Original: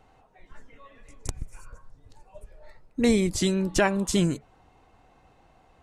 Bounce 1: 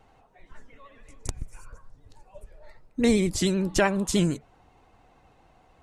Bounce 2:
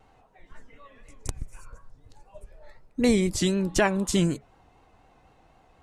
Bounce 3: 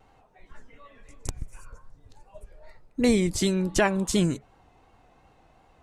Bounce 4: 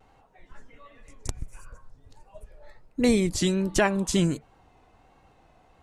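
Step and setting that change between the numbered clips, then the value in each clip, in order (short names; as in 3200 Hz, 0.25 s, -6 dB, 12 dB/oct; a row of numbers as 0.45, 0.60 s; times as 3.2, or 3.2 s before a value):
vibrato, rate: 13, 4, 2.7, 1.4 Hz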